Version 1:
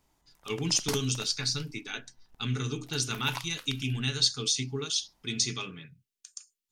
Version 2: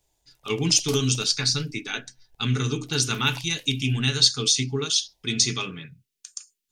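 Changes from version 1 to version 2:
speech +7.0 dB; background: add fixed phaser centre 540 Hz, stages 4

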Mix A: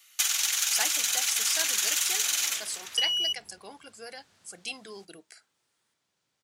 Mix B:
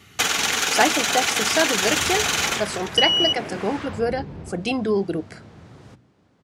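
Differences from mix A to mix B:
first sound: remove HPF 620 Hz 12 dB/oct; second sound: entry +0.90 s; master: remove pre-emphasis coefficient 0.97

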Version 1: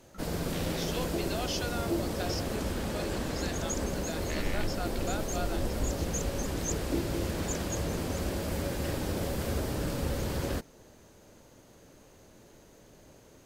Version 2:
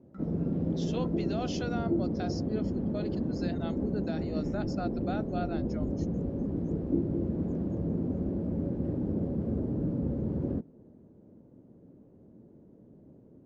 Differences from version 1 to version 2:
background: add band-pass 220 Hz, Q 1.2; master: add tilt shelf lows +7.5 dB, about 940 Hz

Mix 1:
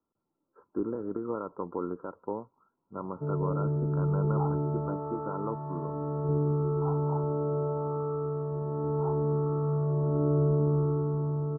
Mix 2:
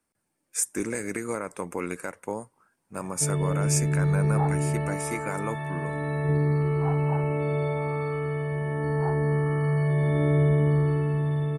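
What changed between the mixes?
second sound: add tilt -4 dB/oct; master: remove rippled Chebyshev low-pass 1400 Hz, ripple 6 dB

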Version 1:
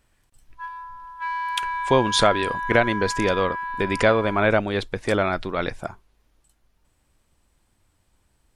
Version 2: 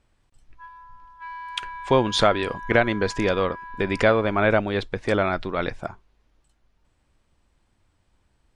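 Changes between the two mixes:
background -8.5 dB; master: add air absorption 71 m

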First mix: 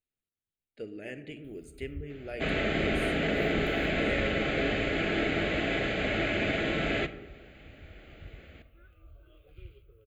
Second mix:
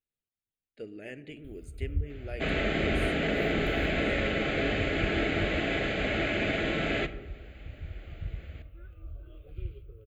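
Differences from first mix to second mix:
speech: send -6.5 dB; first sound: add low shelf 460 Hz +11 dB

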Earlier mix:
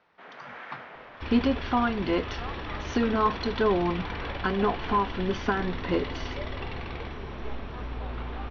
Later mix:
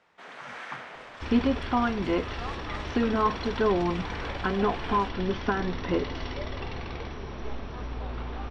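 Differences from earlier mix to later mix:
speech: add air absorption 440 m; second sound: add high shelf 2100 Hz -9 dB; master: remove air absorption 270 m

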